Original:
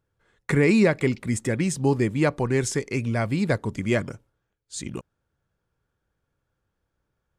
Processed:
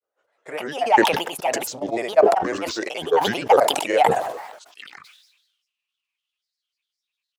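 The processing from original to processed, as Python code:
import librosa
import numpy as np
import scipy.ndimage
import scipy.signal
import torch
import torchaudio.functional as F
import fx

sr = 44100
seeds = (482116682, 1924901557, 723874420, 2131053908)

y = fx.rider(x, sr, range_db=10, speed_s=0.5)
y = fx.filter_sweep_highpass(y, sr, from_hz=630.0, to_hz=3700.0, start_s=4.49, end_s=5.27, q=7.9)
y = fx.granulator(y, sr, seeds[0], grain_ms=100.0, per_s=20.0, spray_ms=100.0, spread_st=7)
y = fx.sustainer(y, sr, db_per_s=55.0)
y = F.gain(torch.from_numpy(y), -1.0).numpy()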